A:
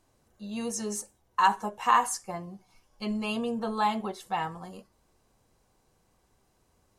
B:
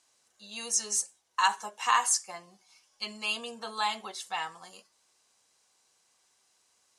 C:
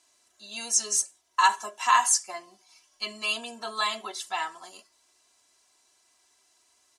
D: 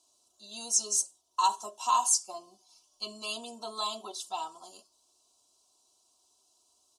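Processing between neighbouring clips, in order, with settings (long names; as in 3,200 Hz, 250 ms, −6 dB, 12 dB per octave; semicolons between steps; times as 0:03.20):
meter weighting curve ITU-R 468; level −3.5 dB
comb filter 3 ms, depth 80%; level +1.5 dB
Butterworth band-reject 1,900 Hz, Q 0.85; level −2.5 dB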